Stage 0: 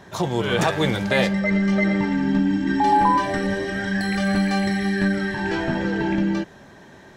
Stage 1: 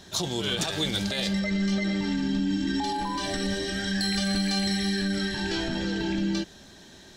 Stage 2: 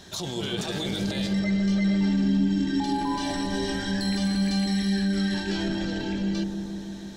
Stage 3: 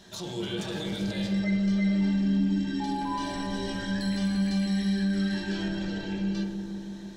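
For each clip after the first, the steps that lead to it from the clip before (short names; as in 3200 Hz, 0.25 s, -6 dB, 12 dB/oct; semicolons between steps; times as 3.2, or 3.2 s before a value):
limiter -15.5 dBFS, peak gain reduction 9.5 dB; graphic EQ 125/250/500/1000/2000/4000/8000 Hz -10/-3/-8/-10/-8/+7/+3 dB; gain +3 dB
limiter -24 dBFS, peak gain reduction 9.5 dB; on a send: dark delay 0.157 s, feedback 76%, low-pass 720 Hz, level -3.5 dB; on the sum: gain +1.5 dB
reverb, pre-delay 3 ms, DRR 0.5 dB; gain -6.5 dB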